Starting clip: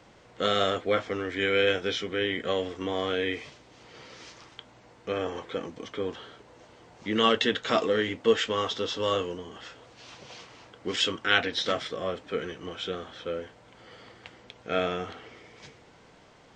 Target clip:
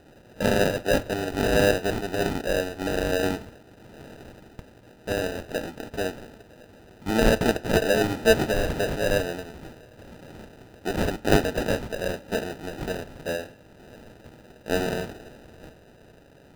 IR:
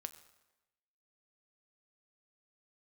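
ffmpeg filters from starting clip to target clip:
-filter_complex "[0:a]asettb=1/sr,asplit=3[link_01][link_02][link_03];[link_01]atrim=end=7.904[link_04];[link_02]atrim=start=7.9:end=8.96,asetpts=PTS-STARTPTS,afade=type=in:duration=0.004:curve=qsin,afade=type=out:start_time=1.056:duration=0.004:curve=qsin,aeval=exprs='val(0)+0.5*0.0158*sgn(val(0))':channel_layout=same[link_05];[link_03]atrim=start=8.956[link_06];[link_04][link_05]acrossfade=duration=0.004:curve1=hsin:curve2=qsin[link_07];[link_07][link_06]acrossfade=duration=0.004:curve1=qsin:curve2=hsin,acrusher=samples=40:mix=1:aa=0.000001,asplit=2[link_08][link_09];[1:a]atrim=start_sample=2205,lowpass=5800[link_10];[link_09][link_10]afir=irnorm=-1:irlink=0,volume=-2dB[link_11];[link_08][link_11]amix=inputs=2:normalize=0"

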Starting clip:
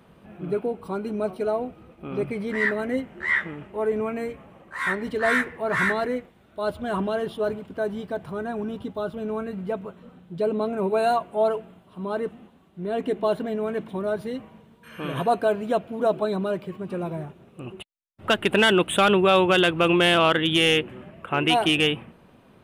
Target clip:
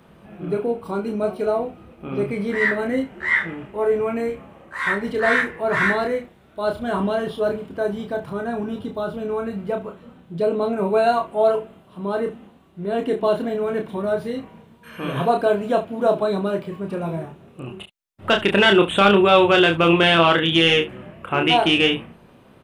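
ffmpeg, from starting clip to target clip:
ffmpeg -i in.wav -filter_complex "[0:a]aecho=1:1:30|71:0.596|0.158,acrossover=split=6100[link_01][link_02];[link_02]acompressor=threshold=-53dB:ratio=4:attack=1:release=60[link_03];[link_01][link_03]amix=inputs=2:normalize=0,volume=2.5dB" out.wav

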